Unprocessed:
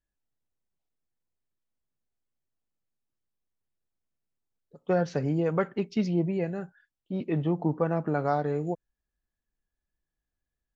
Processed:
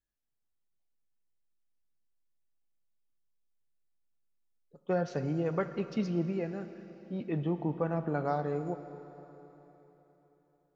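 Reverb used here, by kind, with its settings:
four-comb reverb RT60 3.8 s, combs from 27 ms, DRR 10 dB
level −5 dB

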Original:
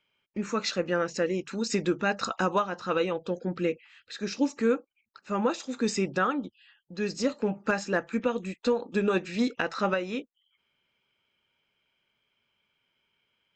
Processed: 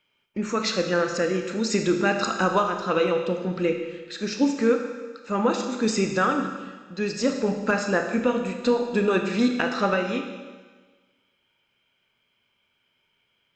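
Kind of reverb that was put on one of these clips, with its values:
four-comb reverb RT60 1.4 s, combs from 25 ms, DRR 4.5 dB
level +3.5 dB

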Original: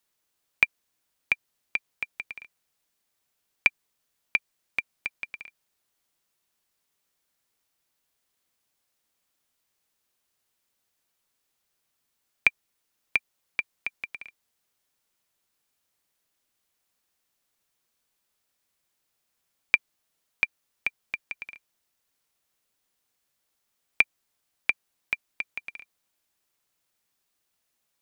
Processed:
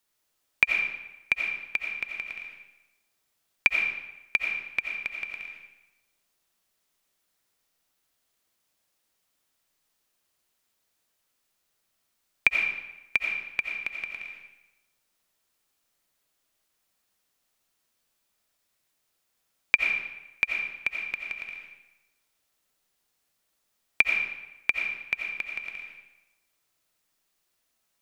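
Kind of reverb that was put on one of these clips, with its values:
comb and all-pass reverb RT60 0.97 s, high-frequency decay 0.85×, pre-delay 45 ms, DRR 1.5 dB

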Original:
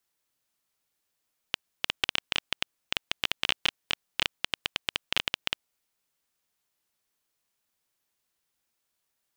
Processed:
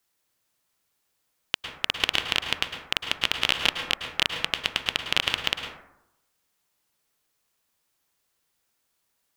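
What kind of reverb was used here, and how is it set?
dense smooth reverb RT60 0.84 s, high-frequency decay 0.35×, pre-delay 95 ms, DRR 5 dB
level +4.5 dB

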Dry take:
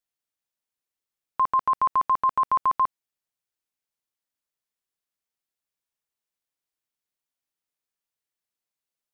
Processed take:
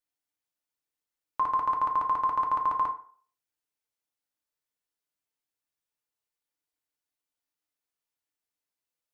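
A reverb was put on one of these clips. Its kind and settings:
feedback delay network reverb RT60 0.47 s, low-frequency decay 0.8×, high-frequency decay 0.6×, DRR 1.5 dB
level −3.5 dB

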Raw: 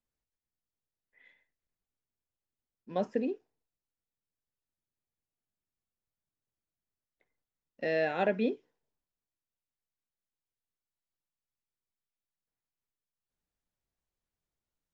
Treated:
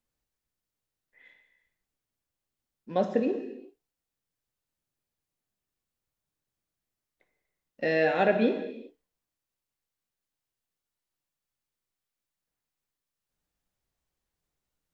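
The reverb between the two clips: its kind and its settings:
reverb whose tail is shaped and stops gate 430 ms falling, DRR 5.5 dB
level +4.5 dB

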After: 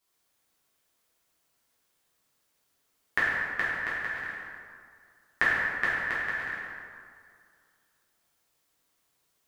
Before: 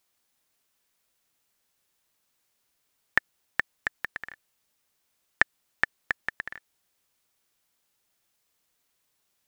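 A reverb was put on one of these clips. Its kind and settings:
dense smooth reverb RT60 2.2 s, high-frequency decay 0.55×, DRR −10 dB
level −8 dB

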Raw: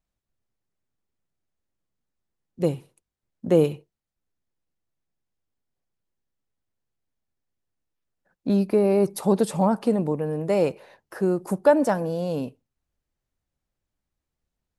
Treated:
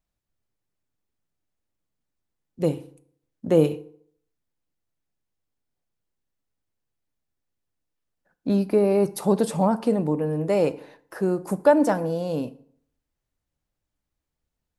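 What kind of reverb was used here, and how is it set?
feedback delay network reverb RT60 0.62 s, low-frequency decay 1×, high-frequency decay 0.7×, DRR 13 dB

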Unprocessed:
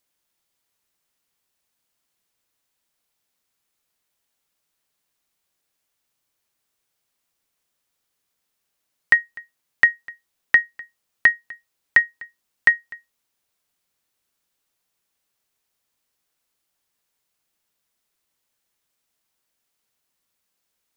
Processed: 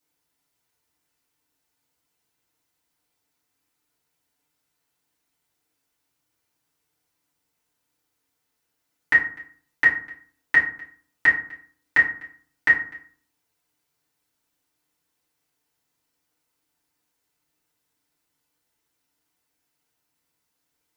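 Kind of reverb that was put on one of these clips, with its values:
feedback delay network reverb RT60 0.48 s, low-frequency decay 1.4×, high-frequency decay 0.55×, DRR −9 dB
level −8 dB

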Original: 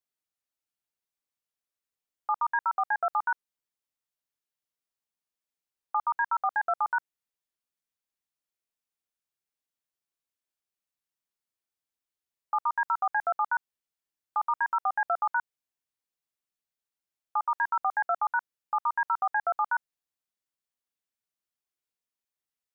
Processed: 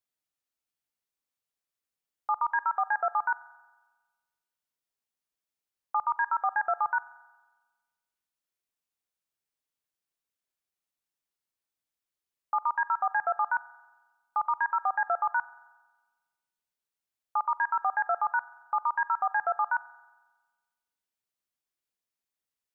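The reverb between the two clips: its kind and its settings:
spring reverb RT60 1.3 s, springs 44 ms, chirp 80 ms, DRR 19 dB

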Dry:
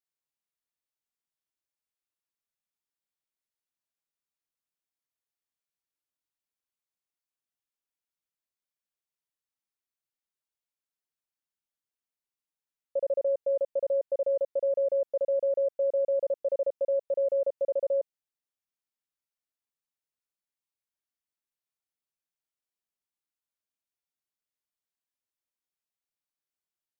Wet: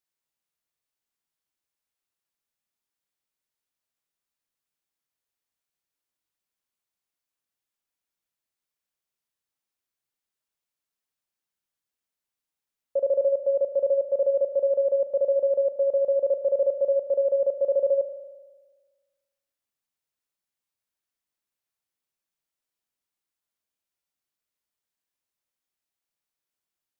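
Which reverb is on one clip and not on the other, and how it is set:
spring reverb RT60 1.4 s, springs 37 ms, chirp 45 ms, DRR 11.5 dB
level +4 dB

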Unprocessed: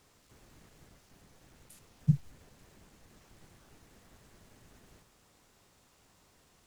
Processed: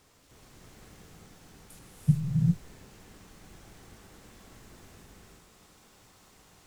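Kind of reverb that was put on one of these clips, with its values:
reverb whose tail is shaped and stops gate 430 ms rising, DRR −3 dB
level +2.5 dB

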